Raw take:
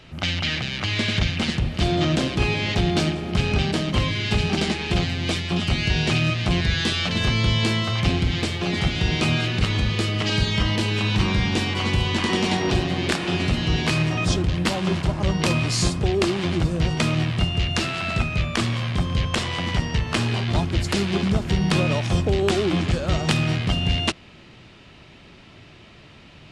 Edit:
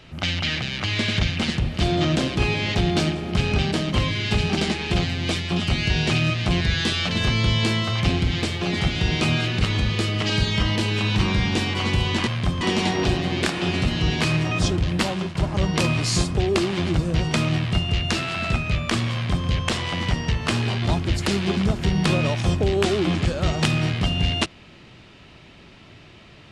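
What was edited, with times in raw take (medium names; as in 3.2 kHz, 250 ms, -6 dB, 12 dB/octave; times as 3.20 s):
14.76–15.01 s: fade out, to -13 dB
18.79–19.13 s: copy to 12.27 s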